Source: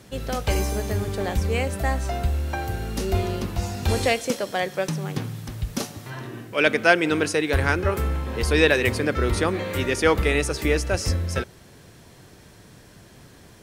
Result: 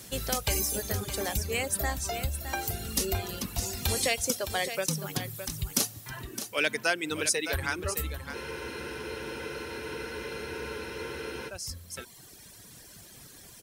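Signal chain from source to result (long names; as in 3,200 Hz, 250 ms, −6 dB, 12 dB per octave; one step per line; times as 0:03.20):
speech leveller within 4 dB 2 s
reverb reduction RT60 1.8 s
downward compressor 2 to 1, threshold −23 dBFS, peak gain reduction 7 dB
first-order pre-emphasis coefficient 0.8
single-tap delay 613 ms −10 dB
frozen spectrum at 0:08.37, 3.11 s
level +7.5 dB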